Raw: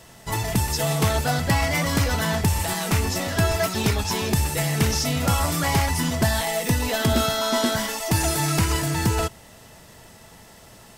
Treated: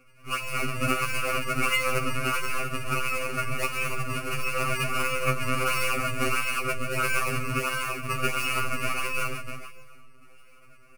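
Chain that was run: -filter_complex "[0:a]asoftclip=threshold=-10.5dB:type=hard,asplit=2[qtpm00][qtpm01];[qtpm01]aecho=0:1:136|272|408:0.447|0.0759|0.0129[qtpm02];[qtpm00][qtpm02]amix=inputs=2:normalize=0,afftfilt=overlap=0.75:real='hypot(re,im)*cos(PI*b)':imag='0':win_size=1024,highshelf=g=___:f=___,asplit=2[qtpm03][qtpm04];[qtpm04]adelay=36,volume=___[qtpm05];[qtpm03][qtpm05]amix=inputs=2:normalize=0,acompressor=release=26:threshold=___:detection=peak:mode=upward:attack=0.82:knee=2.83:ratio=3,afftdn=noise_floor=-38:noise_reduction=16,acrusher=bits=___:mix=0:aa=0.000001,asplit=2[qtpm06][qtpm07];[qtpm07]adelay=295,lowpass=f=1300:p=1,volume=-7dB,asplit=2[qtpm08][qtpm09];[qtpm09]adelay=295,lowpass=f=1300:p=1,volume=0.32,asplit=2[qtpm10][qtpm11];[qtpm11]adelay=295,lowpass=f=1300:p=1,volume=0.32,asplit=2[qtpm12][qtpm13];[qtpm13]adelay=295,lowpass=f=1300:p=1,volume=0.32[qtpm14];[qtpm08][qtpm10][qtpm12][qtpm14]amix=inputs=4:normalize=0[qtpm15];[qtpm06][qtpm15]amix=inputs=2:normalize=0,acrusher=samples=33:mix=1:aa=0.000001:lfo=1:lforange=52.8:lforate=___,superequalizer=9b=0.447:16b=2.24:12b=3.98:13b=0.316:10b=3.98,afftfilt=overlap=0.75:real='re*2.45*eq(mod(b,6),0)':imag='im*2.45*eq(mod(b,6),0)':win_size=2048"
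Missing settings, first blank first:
-5, 5200, -13dB, -40dB, 9, 1.5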